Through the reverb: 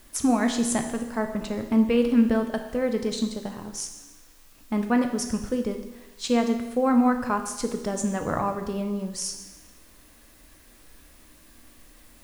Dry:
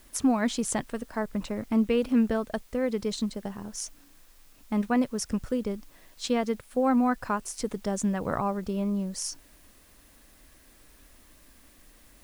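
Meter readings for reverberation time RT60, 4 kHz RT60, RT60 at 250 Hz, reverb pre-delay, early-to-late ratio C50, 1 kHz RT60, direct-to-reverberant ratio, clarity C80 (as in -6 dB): 1.1 s, 1.1 s, 1.0 s, 12 ms, 8.0 dB, 1.1 s, 5.0 dB, 10.0 dB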